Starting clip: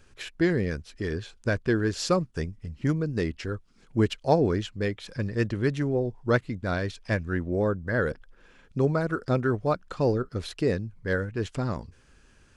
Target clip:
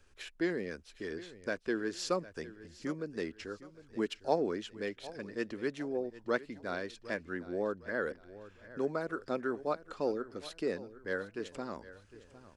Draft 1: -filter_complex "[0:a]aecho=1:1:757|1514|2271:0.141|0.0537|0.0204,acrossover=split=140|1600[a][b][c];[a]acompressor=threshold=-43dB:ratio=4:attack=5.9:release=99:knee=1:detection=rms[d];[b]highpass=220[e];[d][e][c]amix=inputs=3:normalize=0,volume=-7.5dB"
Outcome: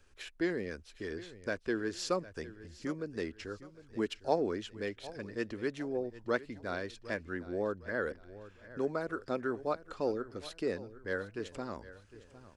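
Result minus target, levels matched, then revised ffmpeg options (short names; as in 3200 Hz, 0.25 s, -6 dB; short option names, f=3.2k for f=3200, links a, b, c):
compressor: peak gain reduction -6 dB
-filter_complex "[0:a]aecho=1:1:757|1514|2271:0.141|0.0537|0.0204,acrossover=split=140|1600[a][b][c];[a]acompressor=threshold=-51dB:ratio=4:attack=5.9:release=99:knee=1:detection=rms[d];[b]highpass=220[e];[d][e][c]amix=inputs=3:normalize=0,volume=-7.5dB"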